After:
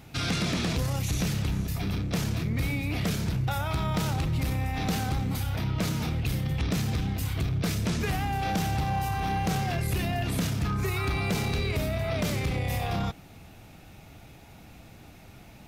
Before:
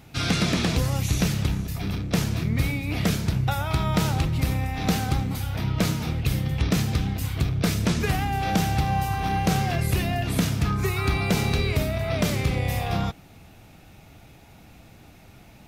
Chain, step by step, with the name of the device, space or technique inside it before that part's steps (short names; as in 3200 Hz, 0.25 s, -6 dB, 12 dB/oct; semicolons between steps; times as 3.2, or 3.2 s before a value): soft clipper into limiter (soft clip -16.5 dBFS, distortion -19 dB; limiter -21.5 dBFS, peak gain reduction 4 dB)